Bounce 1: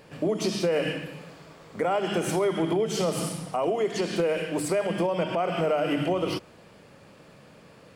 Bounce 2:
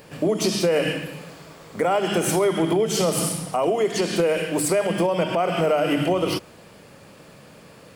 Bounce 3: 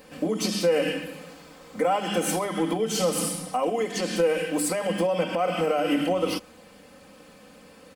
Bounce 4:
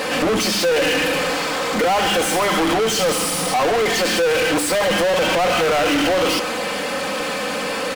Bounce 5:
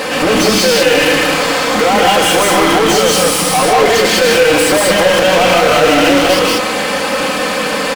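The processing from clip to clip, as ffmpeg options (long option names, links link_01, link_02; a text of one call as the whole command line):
ffmpeg -i in.wav -af "highshelf=frequency=8000:gain=10,volume=4.5dB" out.wav
ffmpeg -i in.wav -af "aecho=1:1:3.9:0.88,volume=-5.5dB" out.wav
ffmpeg -i in.wav -filter_complex "[0:a]asplit=2[link_01][link_02];[link_02]highpass=frequency=720:poles=1,volume=40dB,asoftclip=type=tanh:threshold=-11.5dB[link_03];[link_01][link_03]amix=inputs=2:normalize=0,lowpass=frequency=4400:poles=1,volume=-6dB" out.wav
ffmpeg -i in.wav -af "aecho=1:1:157.4|189.5:0.631|0.891,volume=4.5dB" out.wav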